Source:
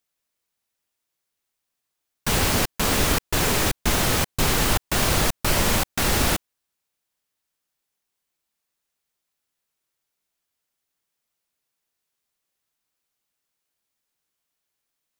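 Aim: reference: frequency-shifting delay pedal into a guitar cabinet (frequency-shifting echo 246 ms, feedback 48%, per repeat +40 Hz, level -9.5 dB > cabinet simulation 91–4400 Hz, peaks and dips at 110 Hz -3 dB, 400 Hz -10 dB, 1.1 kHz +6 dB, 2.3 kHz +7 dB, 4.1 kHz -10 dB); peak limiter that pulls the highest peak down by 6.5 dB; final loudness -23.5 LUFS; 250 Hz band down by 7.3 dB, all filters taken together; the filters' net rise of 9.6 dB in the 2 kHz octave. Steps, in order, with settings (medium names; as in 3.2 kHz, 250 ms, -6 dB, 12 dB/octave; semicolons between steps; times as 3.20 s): peaking EQ 250 Hz -8.5 dB; peaking EQ 2 kHz +8 dB; peak limiter -13 dBFS; frequency-shifting echo 246 ms, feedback 48%, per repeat +40 Hz, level -9.5 dB; cabinet simulation 91–4400 Hz, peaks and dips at 110 Hz -3 dB, 400 Hz -10 dB, 1.1 kHz +6 dB, 2.3 kHz +7 dB, 4.1 kHz -10 dB; trim -1.5 dB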